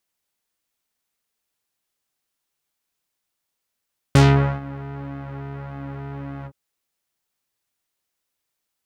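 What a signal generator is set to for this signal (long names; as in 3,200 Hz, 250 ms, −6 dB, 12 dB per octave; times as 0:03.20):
subtractive patch with pulse-width modulation C#3, oscillator 2 square, interval +12 semitones, sub −12 dB, filter lowpass, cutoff 690 Hz, Q 1, filter envelope 4 octaves, filter decay 0.20 s, filter sustain 30%, attack 1.1 ms, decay 0.45 s, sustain −22 dB, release 0.06 s, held 2.31 s, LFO 1.7 Hz, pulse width 40%, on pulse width 11%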